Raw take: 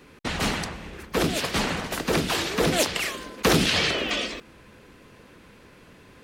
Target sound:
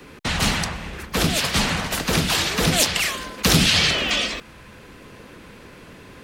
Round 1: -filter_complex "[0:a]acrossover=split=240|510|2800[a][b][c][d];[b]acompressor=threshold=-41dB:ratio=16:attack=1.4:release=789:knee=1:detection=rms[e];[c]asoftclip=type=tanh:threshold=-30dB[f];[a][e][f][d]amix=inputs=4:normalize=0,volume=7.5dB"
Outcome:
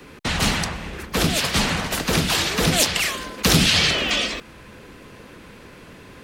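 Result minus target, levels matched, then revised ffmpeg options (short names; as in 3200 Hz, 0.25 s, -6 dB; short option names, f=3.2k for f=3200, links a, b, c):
compressor: peak gain reduction -6 dB
-filter_complex "[0:a]acrossover=split=240|510|2800[a][b][c][d];[b]acompressor=threshold=-47.5dB:ratio=16:attack=1.4:release=789:knee=1:detection=rms[e];[c]asoftclip=type=tanh:threshold=-30dB[f];[a][e][f][d]amix=inputs=4:normalize=0,volume=7.5dB"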